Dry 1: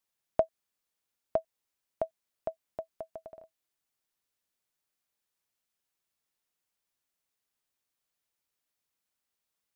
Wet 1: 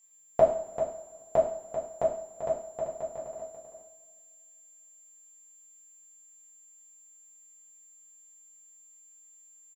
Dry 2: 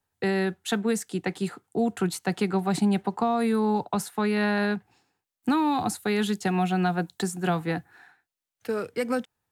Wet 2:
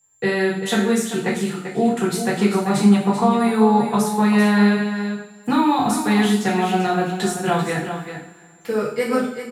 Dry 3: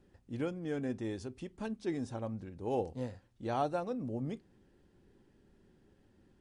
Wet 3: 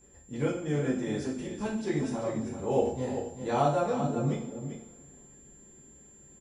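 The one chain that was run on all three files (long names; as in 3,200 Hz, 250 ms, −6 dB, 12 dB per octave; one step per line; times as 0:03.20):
steady tone 7,300 Hz −61 dBFS
single-tap delay 390 ms −9 dB
coupled-rooms reverb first 0.5 s, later 2.4 s, from −20 dB, DRR −6.5 dB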